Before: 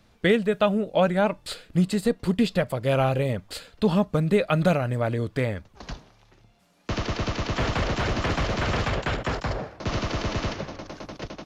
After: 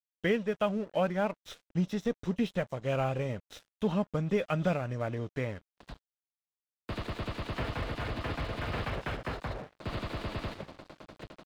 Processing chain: nonlinear frequency compression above 2700 Hz 1.5:1; 7.63–8.74 notch comb 190 Hz; crossover distortion -41.5 dBFS; gain -7.5 dB

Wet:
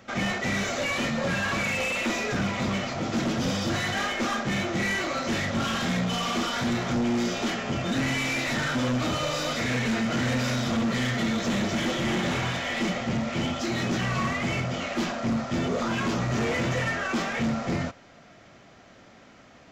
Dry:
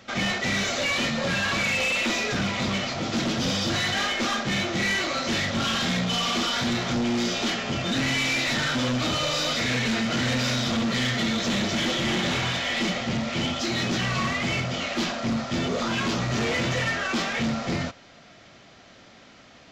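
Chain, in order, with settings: bell 4000 Hz -7.5 dB 1.4 oct

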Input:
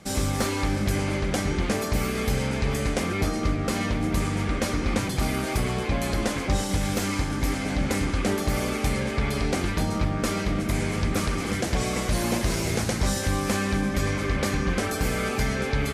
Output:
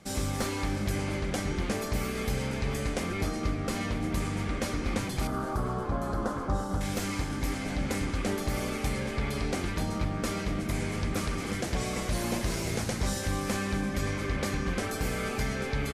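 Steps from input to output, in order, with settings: 5.27–6.81 resonant high shelf 1700 Hz -9.5 dB, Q 3; on a send: frequency-shifting echo 0.233 s, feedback 54%, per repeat -36 Hz, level -18 dB; on the sum: gain -5.5 dB

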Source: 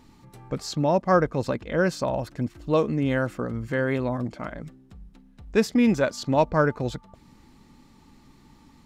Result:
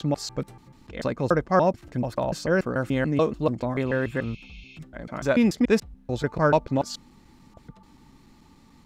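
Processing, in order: slices in reverse order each 0.145 s, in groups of 6; spectral repair 3.89–4.76, 2100–6800 Hz before

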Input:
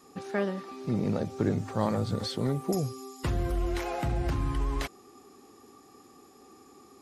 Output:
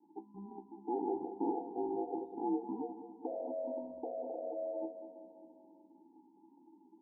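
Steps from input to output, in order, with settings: formant sharpening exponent 3; inverse Chebyshev band-stop 720–2200 Hz, stop band 60 dB; ring modulator 600 Hz; vocal tract filter u; resonator 65 Hz, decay 0.18 s, harmonics all, mix 80%; feedback echo 0.199 s, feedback 56%, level -11.5 dB; gain +12 dB

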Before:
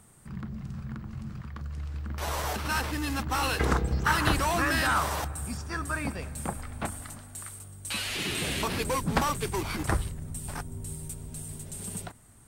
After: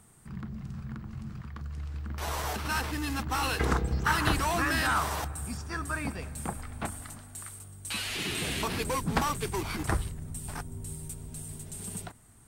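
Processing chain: notch 560 Hz, Q 12; gain -1.5 dB

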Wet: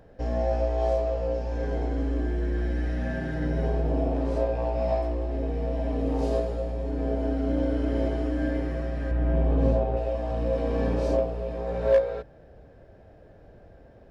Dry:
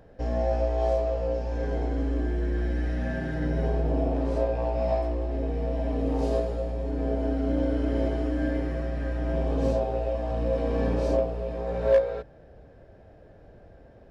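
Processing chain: 9.11–9.97 tone controls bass +5 dB, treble -13 dB

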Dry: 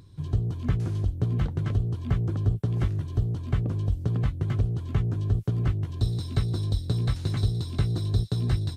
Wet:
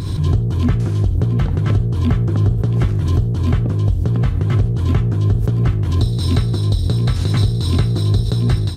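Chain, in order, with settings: in parallel at -1 dB: limiter -20 dBFS, peak gain reduction 7 dB; on the sum: reverb RT60 0.55 s, pre-delay 38 ms, DRR 14 dB; backwards sustainer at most 35 dB/s; gain +4 dB

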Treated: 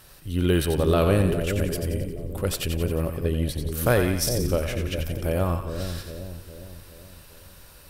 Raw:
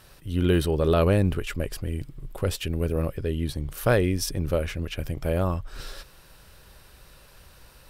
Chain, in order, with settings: high shelf 7300 Hz +7.5 dB; split-band echo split 610 Hz, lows 0.409 s, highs 89 ms, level -6.5 dB

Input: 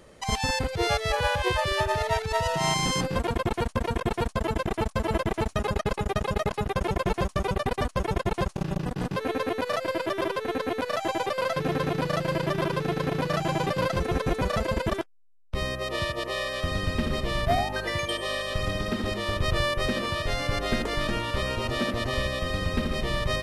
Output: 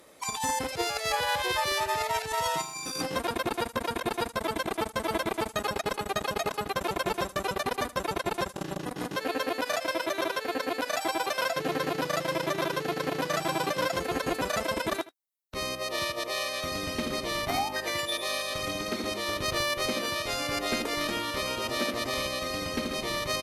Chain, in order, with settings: formant shift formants +2 st; added harmonics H 7 -34 dB, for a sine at -11 dBFS; RIAA curve recording; small resonant body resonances 290/3800 Hz, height 7 dB; negative-ratio compressor -24 dBFS, ratio -0.5; high shelf 2700 Hz -9 dB; echo 78 ms -18.5 dB

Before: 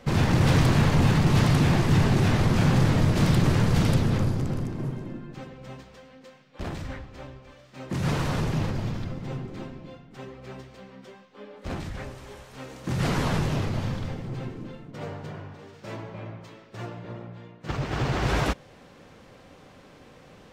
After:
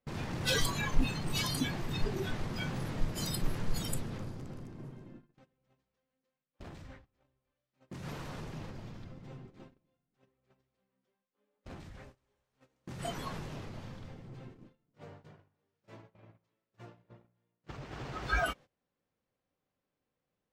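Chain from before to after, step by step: spectral noise reduction 21 dB; dynamic EQ 100 Hz, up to -4 dB, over -52 dBFS, Q 0.75; gate -57 dBFS, range -22 dB; gain +6.5 dB

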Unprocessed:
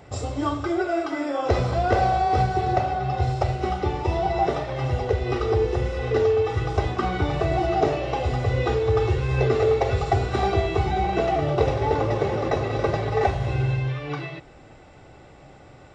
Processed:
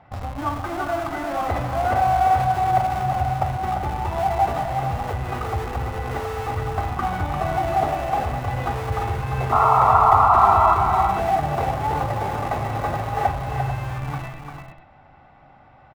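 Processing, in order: air absorption 230 m; notches 60/120/180 Hz; in parallel at -6 dB: Schmitt trigger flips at -27.5 dBFS; on the sum: painted sound noise, 9.52–10.74, 630–1400 Hz -17 dBFS; EQ curve 250 Hz 0 dB, 420 Hz -10 dB, 780 Hz +8 dB, 4200 Hz -1 dB; on a send: tapped delay 0.347/0.445 s -6.5/-11.5 dB; on the sum: gain -5 dB

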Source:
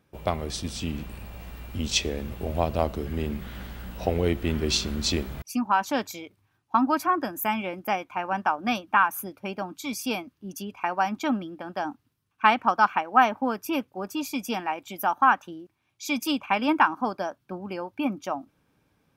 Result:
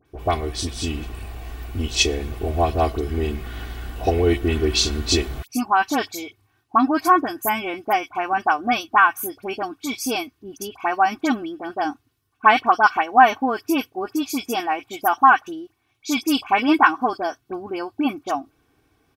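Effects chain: comb 2.7 ms, depth 71%; dispersion highs, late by 56 ms, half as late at 2000 Hz; gain +4 dB

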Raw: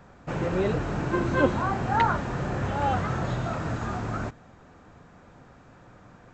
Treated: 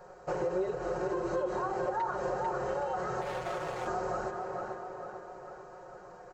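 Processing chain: bell 2400 Hz -10 dB 1 oct; notch 3500 Hz, Q 5.6; on a send: tape echo 0.445 s, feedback 58%, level -7.5 dB, low-pass 3600 Hz; 3.21–3.87 on the sum: hard clip -34 dBFS, distortion -14 dB; limiter -20 dBFS, peak gain reduction 11 dB; resonant low shelf 330 Hz -8.5 dB, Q 3; notches 50/100/150/200/250/300/350/400 Hz; compressor, threshold -32 dBFS, peak gain reduction 10 dB; comb 5.5 ms, depth 74%

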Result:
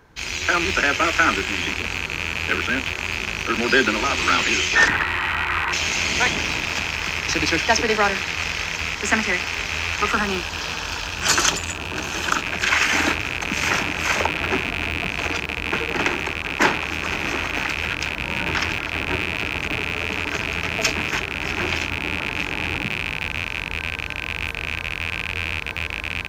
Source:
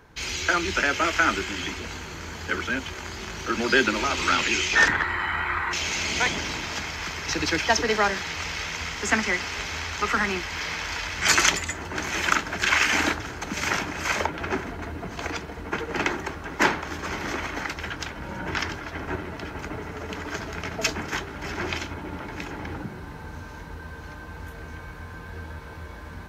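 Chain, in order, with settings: rattling part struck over -41 dBFS, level -15 dBFS; 10.11–12.42 bell 2100 Hz -12 dB 0.33 oct; AGC gain up to 4 dB

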